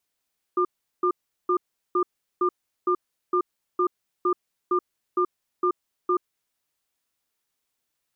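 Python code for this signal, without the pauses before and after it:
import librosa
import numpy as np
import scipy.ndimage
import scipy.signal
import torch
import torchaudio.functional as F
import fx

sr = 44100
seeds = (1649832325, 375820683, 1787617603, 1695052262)

y = fx.cadence(sr, length_s=5.85, low_hz=360.0, high_hz=1200.0, on_s=0.08, off_s=0.38, level_db=-21.5)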